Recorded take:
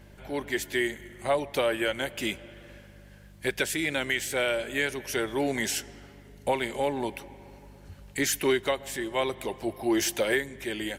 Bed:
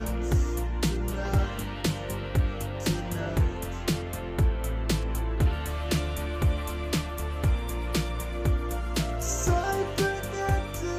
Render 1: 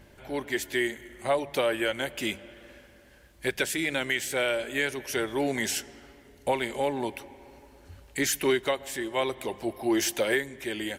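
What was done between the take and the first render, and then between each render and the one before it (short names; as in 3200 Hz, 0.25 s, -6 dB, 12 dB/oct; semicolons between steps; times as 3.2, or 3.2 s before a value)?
de-hum 50 Hz, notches 4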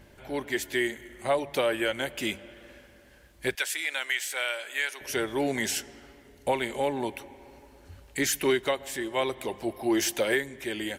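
3.55–5.01 HPF 940 Hz; 6.52–7.33 notch 4900 Hz, Q 11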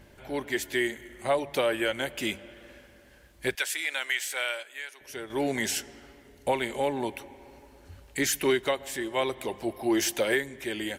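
4.28–5.65 dip -9.5 dB, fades 0.35 s logarithmic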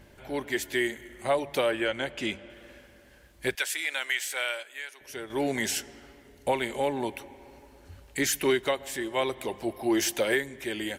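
1.71–2.5 air absorption 62 m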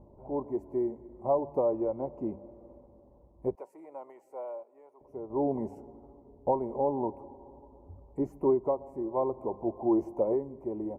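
elliptic low-pass 1000 Hz, stop band 40 dB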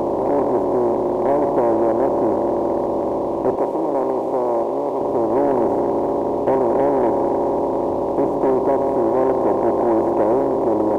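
per-bin compression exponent 0.2; sample leveller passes 1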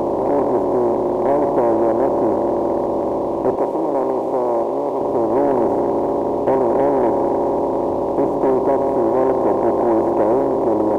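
gain +1 dB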